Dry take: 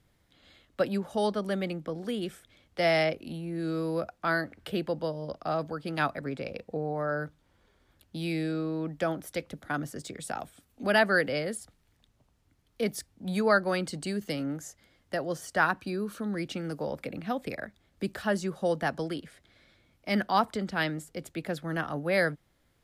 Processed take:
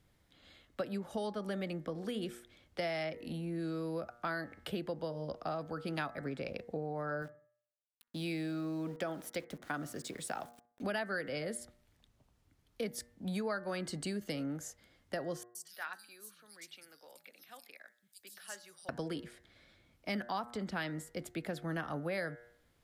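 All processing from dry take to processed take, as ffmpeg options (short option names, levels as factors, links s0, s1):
-filter_complex "[0:a]asettb=1/sr,asplit=3[s0][s1][s2];[s0]atrim=end=7.224[s3];[s1]atrim=start=7.22:end=10.82,asetpts=PTS-STARTPTS,afade=t=in:d=0.004:c=qsin,afade=t=out:st=3.596:d=0.004:c=qsin,lowshelf=f=89:g=-12,aeval=exprs='val(0)*gte(abs(val(0)),0.00282)':c=same,asplit=2[s4][s5];[s5]adelay=63,lowpass=f=850:p=1,volume=0.1,asplit=2[s6][s7];[s7]adelay=63,lowpass=f=850:p=1,volume=0.4,asplit=2[s8][s9];[s9]adelay=63,lowpass=f=850:p=1,volume=0.4[s10];[s4][s6][s8][s10]amix=inputs=4:normalize=0,atrim=end_sample=158760[s11];[s2]atrim=start=10.816[s12];[s3][s11]acrossfade=d=0.004:c1=hsin:c2=qsin[s13];[s13][s12]acrossfade=d=0.004:c1=qsin:c2=hsin,asettb=1/sr,asplit=3[s14][s15][s16];[s14]atrim=end=15.434[s17];[s15]atrim=start=15.43:end=18.89,asetpts=PTS-STARTPTS,afade=t=in:d=0.004:c=qsin,afade=t=out:st=3.456:d=0.004:c=qsin,aderivative,acrossover=split=170|4300[s18][s19][s20];[s20]adelay=120[s21];[s19]adelay=220[s22];[s18][s22][s21]amix=inputs=3:normalize=0,atrim=end_sample=152586[s23];[s16]atrim=start=18.886[s24];[s17][s23]acrossfade=d=0.004:c1=hsin:c2=qsin[s25];[s25][s24]acrossfade=d=0.004:c1=qsin:c2=hsin,bandreject=f=119.2:t=h:w=4,bandreject=f=238.4:t=h:w=4,bandreject=f=357.6:t=h:w=4,bandreject=f=476.8:t=h:w=4,bandreject=f=596:t=h:w=4,bandreject=f=715.2:t=h:w=4,bandreject=f=834.4:t=h:w=4,bandreject=f=953.6:t=h:w=4,bandreject=f=1072.8:t=h:w=4,bandreject=f=1192:t=h:w=4,bandreject=f=1311.2:t=h:w=4,bandreject=f=1430.4:t=h:w=4,bandreject=f=1549.6:t=h:w=4,bandreject=f=1668.8:t=h:w=4,bandreject=f=1788:t=h:w=4,bandreject=f=1907.2:t=h:w=4,bandreject=f=2026.4:t=h:w=4,bandreject=f=2145.6:t=h:w=4,acompressor=threshold=0.0251:ratio=6,volume=0.794"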